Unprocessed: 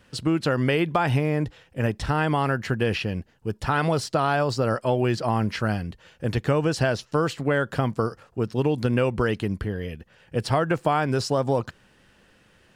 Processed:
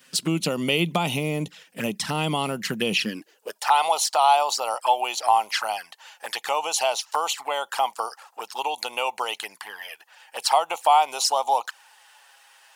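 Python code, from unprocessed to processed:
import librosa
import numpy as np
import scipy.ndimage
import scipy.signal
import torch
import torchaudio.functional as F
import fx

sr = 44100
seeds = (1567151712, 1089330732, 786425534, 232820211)

y = fx.env_flanger(x, sr, rest_ms=7.9, full_db=-20.5)
y = fx.filter_sweep_highpass(y, sr, from_hz=180.0, to_hz=830.0, start_s=2.98, end_s=3.65, q=5.6)
y = fx.tilt_eq(y, sr, slope=4.5)
y = F.gain(torch.from_numpy(y), 2.0).numpy()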